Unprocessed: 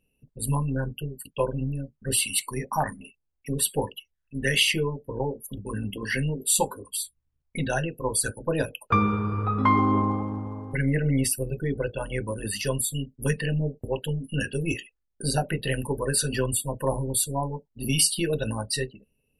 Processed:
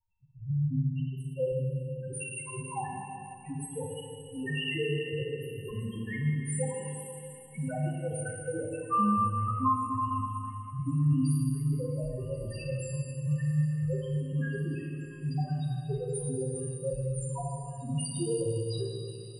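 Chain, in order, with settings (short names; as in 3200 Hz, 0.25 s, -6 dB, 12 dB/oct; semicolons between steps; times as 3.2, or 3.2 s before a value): crackle 430/s -47 dBFS; loudest bins only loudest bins 1; on a send: thin delay 1.092 s, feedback 82%, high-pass 3400 Hz, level -18 dB; on the sum: Schroeder reverb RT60 2.7 s, combs from 27 ms, DRR -2 dB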